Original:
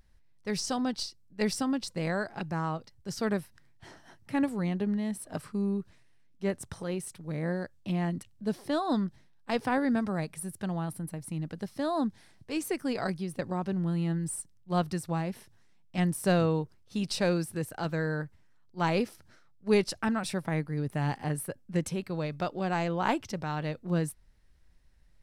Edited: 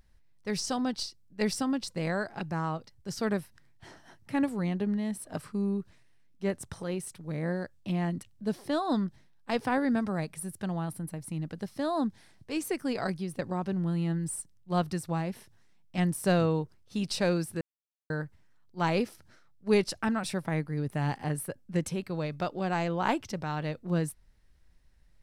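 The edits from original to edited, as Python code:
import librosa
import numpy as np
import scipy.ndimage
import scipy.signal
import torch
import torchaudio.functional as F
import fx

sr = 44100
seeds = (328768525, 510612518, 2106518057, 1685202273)

y = fx.edit(x, sr, fx.silence(start_s=17.61, length_s=0.49), tone=tone)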